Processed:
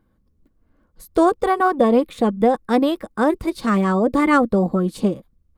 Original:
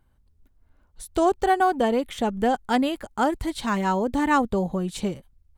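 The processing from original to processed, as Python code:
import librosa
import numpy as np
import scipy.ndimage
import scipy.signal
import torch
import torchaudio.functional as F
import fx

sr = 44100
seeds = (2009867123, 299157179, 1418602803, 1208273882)

y = fx.small_body(x, sr, hz=(210.0, 310.0, 480.0, 1100.0), ring_ms=35, db=12)
y = fx.formant_shift(y, sr, semitones=2)
y = y * 10.0 ** (-3.0 / 20.0)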